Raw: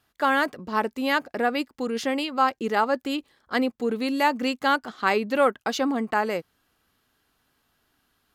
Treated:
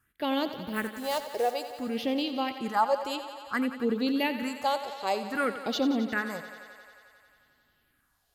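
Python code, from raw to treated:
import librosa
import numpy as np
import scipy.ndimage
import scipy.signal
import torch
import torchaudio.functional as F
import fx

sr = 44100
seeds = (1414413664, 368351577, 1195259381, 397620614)

y = fx.block_float(x, sr, bits=5, at=(0.53, 1.53))
y = fx.phaser_stages(y, sr, stages=4, low_hz=210.0, high_hz=1700.0, hz=0.56, feedback_pct=35)
y = fx.echo_thinned(y, sr, ms=89, feedback_pct=81, hz=220.0, wet_db=-12)
y = F.gain(torch.from_numpy(y), -1.5).numpy()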